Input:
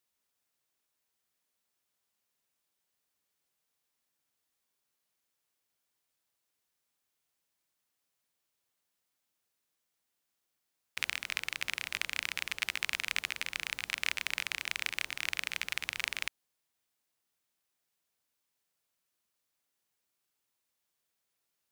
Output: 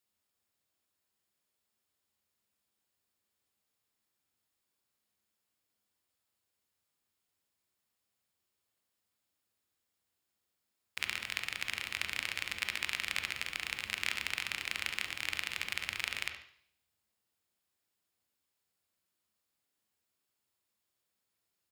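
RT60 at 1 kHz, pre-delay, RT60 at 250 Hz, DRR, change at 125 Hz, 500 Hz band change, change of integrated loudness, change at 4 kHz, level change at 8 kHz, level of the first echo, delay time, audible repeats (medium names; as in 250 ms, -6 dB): 0.60 s, 21 ms, 0.65 s, 5.0 dB, +4.0 dB, 0.0 dB, -1.0 dB, -1.0 dB, -2.5 dB, -13.0 dB, 71 ms, 1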